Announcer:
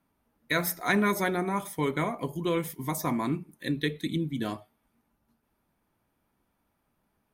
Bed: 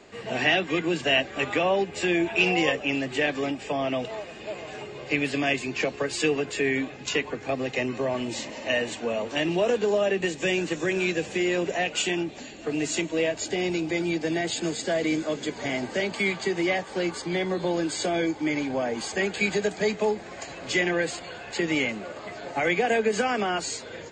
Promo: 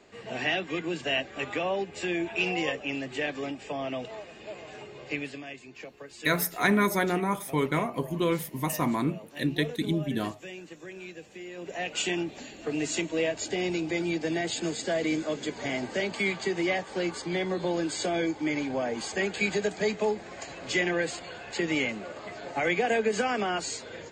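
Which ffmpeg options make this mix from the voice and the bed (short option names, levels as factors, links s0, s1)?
-filter_complex "[0:a]adelay=5750,volume=1.19[s0];[1:a]volume=2.66,afade=t=out:st=5.08:d=0.36:silence=0.281838,afade=t=in:st=11.55:d=0.51:silence=0.188365[s1];[s0][s1]amix=inputs=2:normalize=0"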